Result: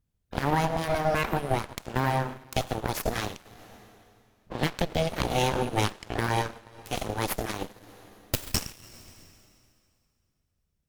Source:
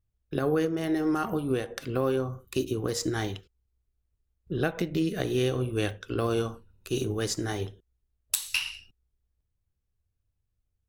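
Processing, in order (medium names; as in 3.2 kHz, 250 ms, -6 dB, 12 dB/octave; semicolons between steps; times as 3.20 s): full-wave rectifier; plate-style reverb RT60 2.4 s, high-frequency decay 0.95×, DRR 8.5 dB; Chebyshev shaper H 4 -7 dB, 8 -15 dB, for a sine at -8 dBFS; trim +3.5 dB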